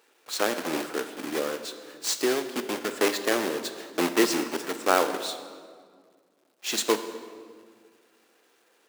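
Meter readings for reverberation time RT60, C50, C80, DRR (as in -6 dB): 1.9 s, 10.0 dB, 11.0 dB, 8.0 dB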